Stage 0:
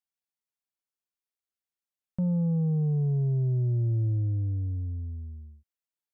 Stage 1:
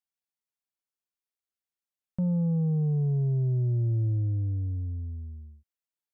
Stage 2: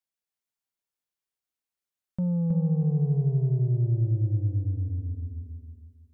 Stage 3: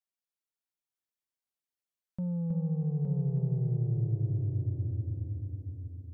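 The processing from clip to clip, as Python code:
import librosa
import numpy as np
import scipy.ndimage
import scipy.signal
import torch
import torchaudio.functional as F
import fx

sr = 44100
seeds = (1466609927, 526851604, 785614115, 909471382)

y1 = x
y2 = fx.echo_feedback(y1, sr, ms=319, feedback_pct=31, wet_db=-4.0)
y3 = fx.echo_feedback(y2, sr, ms=866, feedback_pct=20, wet_db=-5.0)
y3 = y3 * 10.0 ** (-6.5 / 20.0)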